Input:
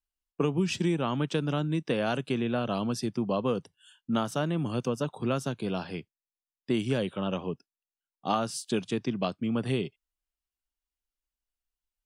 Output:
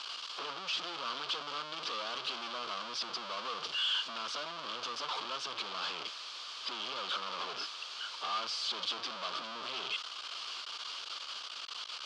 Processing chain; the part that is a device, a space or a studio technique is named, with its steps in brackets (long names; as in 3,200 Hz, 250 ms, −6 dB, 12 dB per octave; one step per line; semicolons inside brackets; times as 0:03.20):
home computer beeper (sign of each sample alone; loudspeaker in its box 690–5,100 Hz, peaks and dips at 780 Hz −5 dB, 1,200 Hz +9 dB, 1,900 Hz −9 dB, 3,200 Hz +8 dB, 4,600 Hz +7 dB)
level −4.5 dB